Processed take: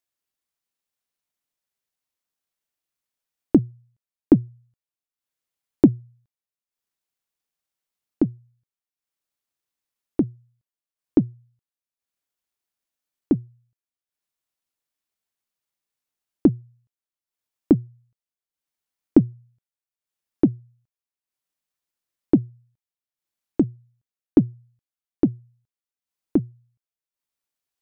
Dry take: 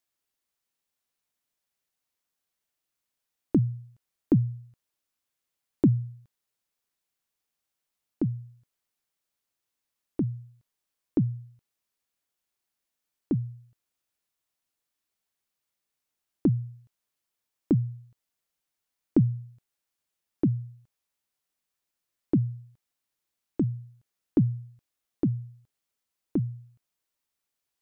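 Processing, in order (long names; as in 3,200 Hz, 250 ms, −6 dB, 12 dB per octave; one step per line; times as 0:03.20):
transient designer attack +12 dB, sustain −9 dB
level −3 dB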